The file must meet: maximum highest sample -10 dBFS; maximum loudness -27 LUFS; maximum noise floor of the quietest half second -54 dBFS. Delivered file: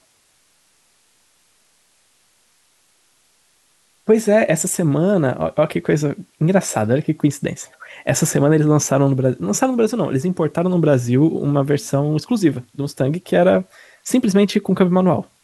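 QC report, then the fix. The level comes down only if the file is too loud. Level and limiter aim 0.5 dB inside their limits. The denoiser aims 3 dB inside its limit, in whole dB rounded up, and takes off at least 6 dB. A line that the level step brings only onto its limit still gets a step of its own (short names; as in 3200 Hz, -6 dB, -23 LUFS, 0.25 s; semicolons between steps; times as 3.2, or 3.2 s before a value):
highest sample -4.0 dBFS: fail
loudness -17.5 LUFS: fail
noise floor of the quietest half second -59 dBFS: OK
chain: gain -10 dB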